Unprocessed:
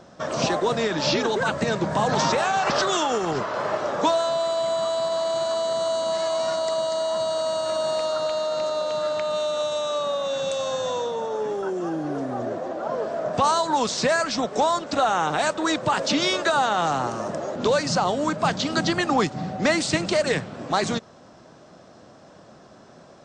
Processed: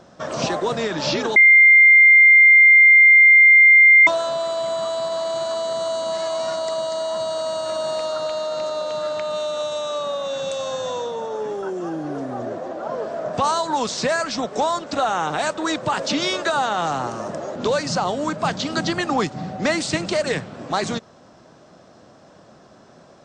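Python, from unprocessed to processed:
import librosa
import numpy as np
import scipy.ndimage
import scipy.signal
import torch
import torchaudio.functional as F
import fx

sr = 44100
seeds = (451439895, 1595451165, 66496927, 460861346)

y = fx.edit(x, sr, fx.bleep(start_s=1.36, length_s=2.71, hz=2100.0, db=-7.0), tone=tone)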